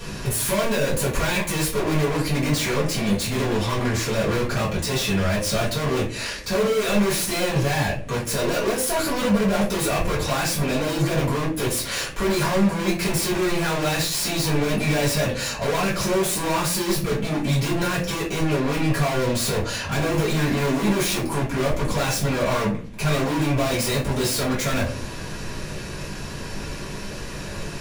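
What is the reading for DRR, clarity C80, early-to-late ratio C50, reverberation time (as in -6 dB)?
-9.0 dB, 13.0 dB, 7.0 dB, 0.40 s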